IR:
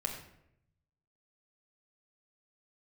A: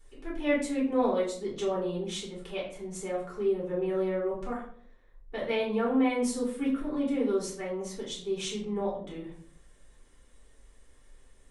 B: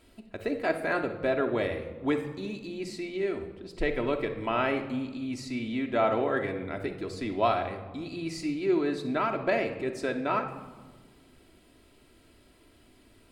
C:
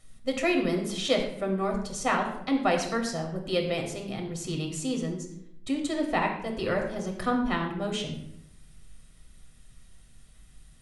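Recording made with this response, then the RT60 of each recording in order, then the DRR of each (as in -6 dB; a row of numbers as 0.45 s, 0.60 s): C; 0.55 s, 1.4 s, 0.75 s; -6.0 dB, 3.0 dB, 1.0 dB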